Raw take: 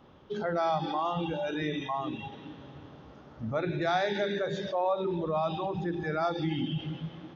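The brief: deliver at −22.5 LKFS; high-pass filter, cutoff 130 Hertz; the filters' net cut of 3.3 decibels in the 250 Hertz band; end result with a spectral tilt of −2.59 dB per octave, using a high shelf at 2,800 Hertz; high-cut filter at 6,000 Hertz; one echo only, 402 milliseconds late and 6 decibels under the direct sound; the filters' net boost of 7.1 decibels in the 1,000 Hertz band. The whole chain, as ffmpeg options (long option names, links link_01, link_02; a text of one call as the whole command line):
ffmpeg -i in.wav -af "highpass=130,lowpass=6000,equalizer=frequency=250:width_type=o:gain=-5.5,equalizer=frequency=1000:width_type=o:gain=9,highshelf=frequency=2800:gain=8,aecho=1:1:402:0.501,volume=4.5dB" out.wav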